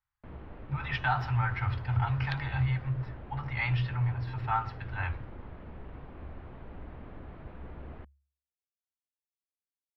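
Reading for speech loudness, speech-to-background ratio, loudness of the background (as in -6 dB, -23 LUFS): -32.0 LUFS, 15.5 dB, -47.5 LUFS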